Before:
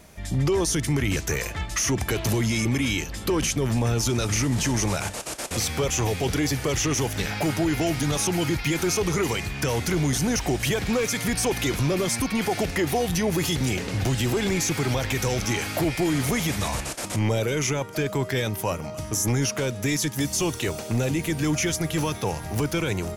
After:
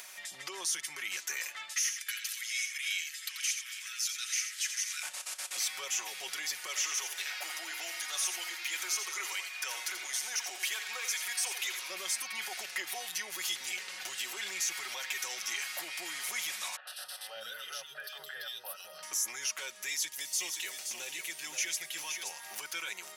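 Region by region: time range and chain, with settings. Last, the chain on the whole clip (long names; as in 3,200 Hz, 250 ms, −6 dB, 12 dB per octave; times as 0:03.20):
0:01.73–0:05.03: Butterworth high-pass 1,500 Hz + multi-tap delay 86/821 ms −8/−13 dB
0:06.66–0:11.90: high-pass filter 390 Hz + single-tap delay 85 ms −8.5 dB
0:16.76–0:19.03: phaser with its sweep stopped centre 1,500 Hz, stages 8 + three-band delay without the direct sound mids, highs, lows 110/210 ms, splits 410/2,300 Hz
0:19.88–0:22.31: parametric band 1,200 Hz −6 dB 0.84 octaves + single-tap delay 525 ms −6.5 dB
whole clip: high-pass filter 1,500 Hz 12 dB per octave; comb filter 5.4 ms, depth 52%; upward compression, threshold −31 dBFS; level −6.5 dB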